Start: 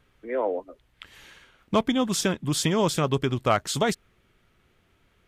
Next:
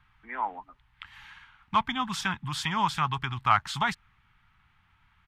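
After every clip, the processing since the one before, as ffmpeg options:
-filter_complex "[0:a]firequalizer=gain_entry='entry(130,0);entry(320,-17);entry(530,-27);entry(830,5);entry(6800,-8)':delay=0.05:min_phase=1,acrossover=split=420[s0][s1];[s0]alimiter=level_in=2:limit=0.0631:level=0:latency=1,volume=0.501[s2];[s1]highshelf=f=5000:g=-5.5[s3];[s2][s3]amix=inputs=2:normalize=0"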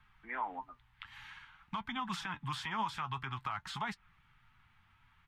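-filter_complex "[0:a]acrossover=split=300|2900[s0][s1][s2];[s0]acompressor=threshold=0.00794:ratio=4[s3];[s1]acompressor=threshold=0.0447:ratio=4[s4];[s2]acompressor=threshold=0.00398:ratio=4[s5];[s3][s4][s5]amix=inputs=3:normalize=0,alimiter=level_in=1.12:limit=0.0631:level=0:latency=1:release=102,volume=0.891,flanger=delay=4.5:depth=4.9:regen=58:speed=0.52:shape=triangular,volume=1.26"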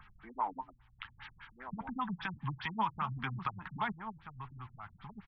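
-filter_complex "[0:a]acompressor=mode=upward:threshold=0.00178:ratio=2.5,asplit=2[s0][s1];[s1]adelay=1283,volume=0.398,highshelf=f=4000:g=-28.9[s2];[s0][s2]amix=inputs=2:normalize=0,afftfilt=real='re*lt(b*sr/1024,210*pow(6200/210,0.5+0.5*sin(2*PI*5*pts/sr)))':imag='im*lt(b*sr/1024,210*pow(6200/210,0.5+0.5*sin(2*PI*5*pts/sr)))':win_size=1024:overlap=0.75,volume=1.5"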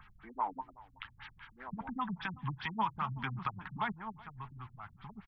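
-af "aecho=1:1:375:0.0841"

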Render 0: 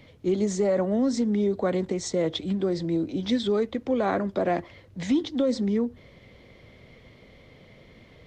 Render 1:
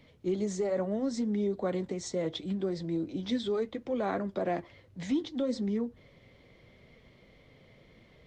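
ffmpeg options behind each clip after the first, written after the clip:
-af "flanger=delay=4.3:depth=3.5:regen=-64:speed=0.72:shape=triangular,volume=0.75"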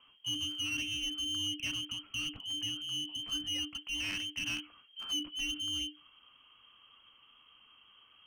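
-af "lowpass=f=3100:t=q:w=0.5098,lowpass=f=3100:t=q:w=0.6013,lowpass=f=3100:t=q:w=0.9,lowpass=f=3100:t=q:w=2.563,afreqshift=-3600,aeval=exprs='clip(val(0),-1,0.0168)':c=same,afreqshift=-300,volume=0.668"

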